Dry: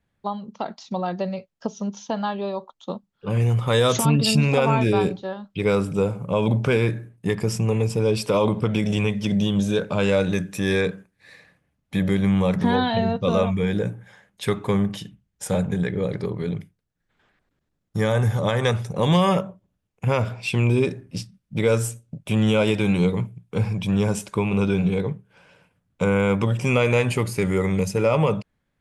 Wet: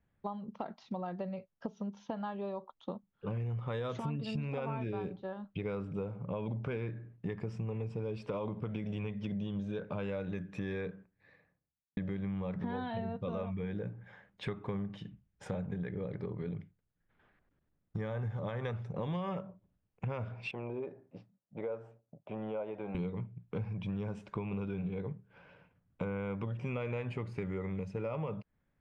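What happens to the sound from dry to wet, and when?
0:10.63–0:11.97: fade out and dull
0:20.51–0:22.95: resonant band-pass 690 Hz, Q 1.9
whole clip: low-pass filter 2,400 Hz 12 dB per octave; low-shelf EQ 140 Hz +3 dB; downward compressor 4 to 1, threshold −32 dBFS; level −4.5 dB

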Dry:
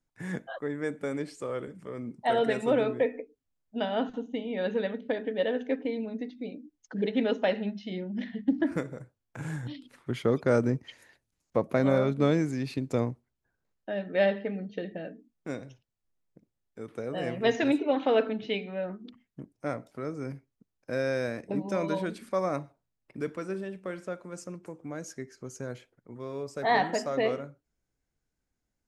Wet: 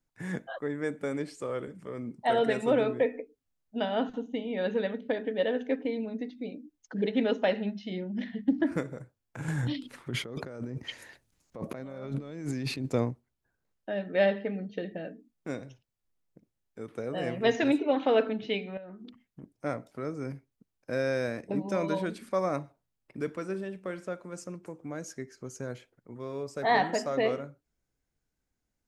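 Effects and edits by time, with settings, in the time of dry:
0:09.48–0:12.90: compressor whose output falls as the input rises −36 dBFS
0:18.77–0:19.43: downward compressor 16 to 1, threshold −41 dBFS

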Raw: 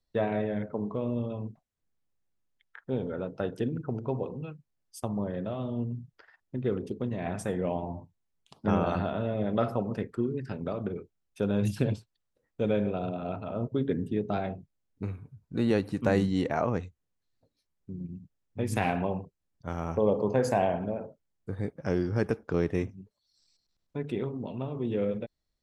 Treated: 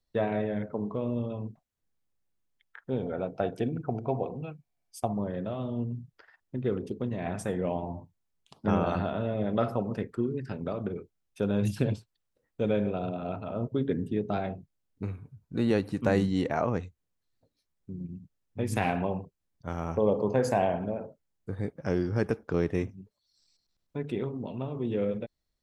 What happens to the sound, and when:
0:03.03–0:05.14: hollow resonant body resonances 710/2,300 Hz, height 13 dB, ringing for 35 ms

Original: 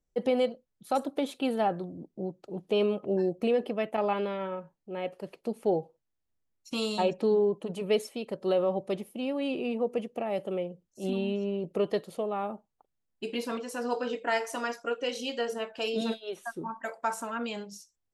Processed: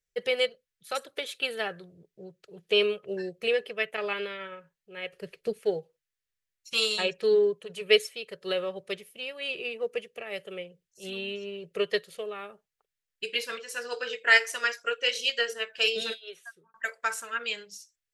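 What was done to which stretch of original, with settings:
0:05.13–0:05.59: low-shelf EQ 440 Hz +11 dB
0:16.07–0:16.74: fade out
whole clip: drawn EQ curve 170 Hz 0 dB, 270 Hz −17 dB, 420 Hz +5 dB, 830 Hz −7 dB, 1,700 Hz +15 dB, 11,000 Hz +11 dB; expander for the loud parts 1.5 to 1, over −35 dBFS

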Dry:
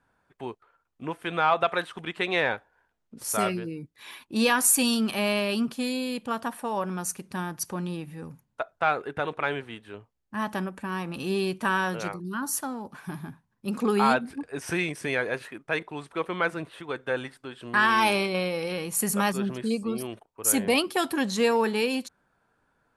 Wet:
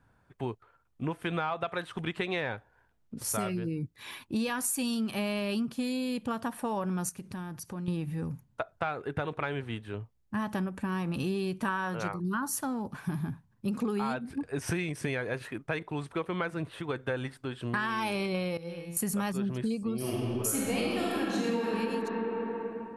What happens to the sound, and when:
0:07.09–0:07.88: downward compressor 3 to 1, threshold −43 dBFS
0:11.68–0:12.48: parametric band 1,100 Hz +7.5 dB 1.6 octaves
0:18.57–0:18.97: tuned comb filter 170 Hz, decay 0.82 s, mix 90%
0:19.97–0:21.67: thrown reverb, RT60 2.6 s, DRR −7 dB
whole clip: low-shelf EQ 230 Hz +9 dB; downward compressor, threshold −29 dBFS; parametric band 110 Hz +5 dB 0.68 octaves

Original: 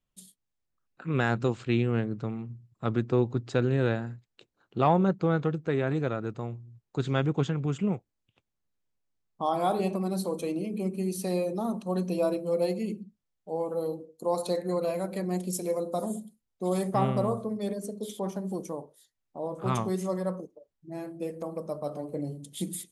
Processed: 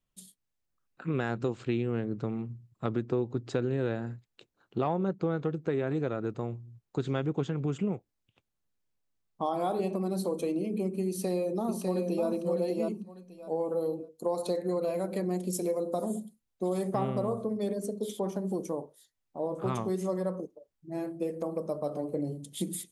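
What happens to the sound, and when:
0:11.08–0:12.28: delay throw 600 ms, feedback 15%, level −4 dB
whole clip: dynamic equaliser 380 Hz, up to +5 dB, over −40 dBFS, Q 0.86; downward compressor 3 to 1, threshold −28 dBFS

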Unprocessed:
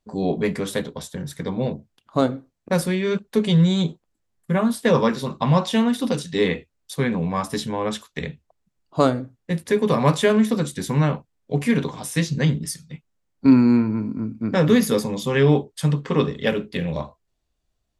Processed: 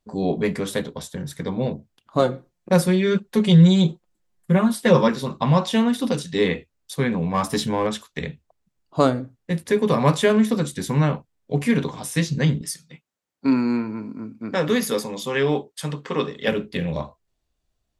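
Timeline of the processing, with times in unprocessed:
0:02.19–0:05.08: comb filter 5.6 ms
0:07.34–0:07.87: leveller curve on the samples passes 1
0:12.61–0:16.48: high-pass filter 420 Hz 6 dB per octave

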